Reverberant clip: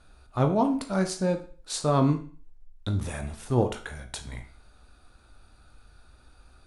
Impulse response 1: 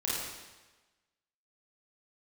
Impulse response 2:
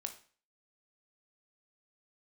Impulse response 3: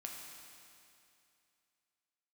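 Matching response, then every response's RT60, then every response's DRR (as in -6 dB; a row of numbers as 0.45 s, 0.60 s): 2; 1.2 s, 0.40 s, 2.6 s; -7.5 dB, 5.5 dB, -0.5 dB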